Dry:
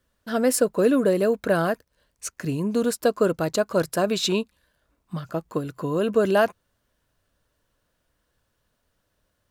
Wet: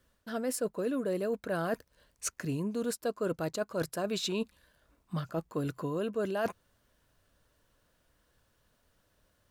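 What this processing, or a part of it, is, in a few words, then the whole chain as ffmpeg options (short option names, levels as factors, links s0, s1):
compression on the reversed sound: -af "areverse,acompressor=threshold=0.0251:ratio=6,areverse,volume=1.19"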